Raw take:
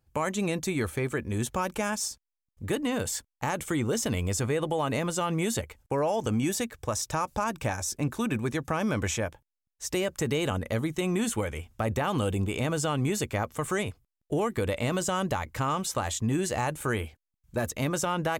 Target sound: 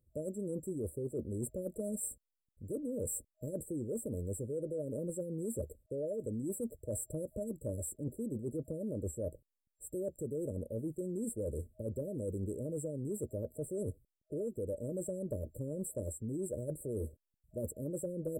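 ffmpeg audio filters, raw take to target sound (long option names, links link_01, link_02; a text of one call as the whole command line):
ffmpeg -i in.wav -af "afftfilt=real='re*(1-between(b*sr/4096,630,7400))':imag='im*(1-between(b*sr/4096,630,7400))':win_size=4096:overlap=0.75,adynamicequalizer=threshold=0.01:dfrequency=440:dqfactor=1.2:tfrequency=440:tqfactor=1.2:attack=5:release=100:ratio=0.375:range=2.5:mode=boostabove:tftype=bell,areverse,acompressor=threshold=-33dB:ratio=16,areverse,volume=-1.5dB" out.wav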